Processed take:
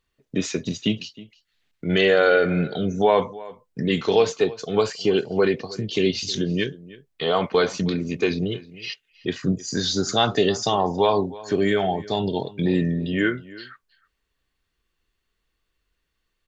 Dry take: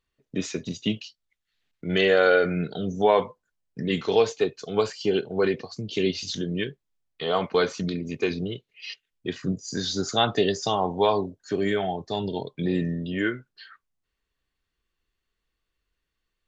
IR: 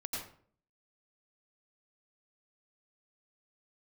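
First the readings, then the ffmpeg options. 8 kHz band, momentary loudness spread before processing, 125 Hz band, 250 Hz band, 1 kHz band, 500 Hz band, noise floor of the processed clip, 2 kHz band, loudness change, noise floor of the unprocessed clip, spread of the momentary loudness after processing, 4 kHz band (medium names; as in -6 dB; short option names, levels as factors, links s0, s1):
no reading, 13 LU, +4.5 dB, +4.0 dB, +2.5 dB, +3.0 dB, -77 dBFS, +2.5 dB, +3.0 dB, -82 dBFS, 12 LU, +3.5 dB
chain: -filter_complex "[0:a]asplit=2[s0][s1];[s1]alimiter=limit=0.15:level=0:latency=1:release=86,volume=1.06[s2];[s0][s2]amix=inputs=2:normalize=0,asplit=2[s3][s4];[s4]adelay=314.9,volume=0.112,highshelf=f=4000:g=-7.08[s5];[s3][s5]amix=inputs=2:normalize=0,volume=0.841"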